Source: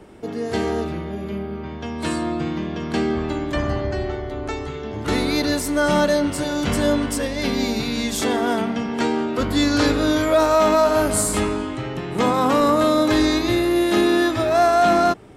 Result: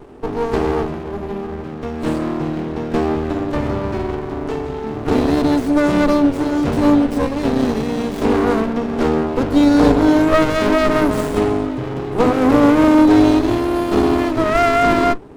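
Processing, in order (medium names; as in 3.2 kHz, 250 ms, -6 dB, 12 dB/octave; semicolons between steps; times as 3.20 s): peaking EQ 450 Hz +10.5 dB 2.2 oct; on a send at -11 dB: high-pass 130 Hz + reverberation RT60 0.15 s, pre-delay 3 ms; on the sum: sliding maximum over 33 samples; trim -2 dB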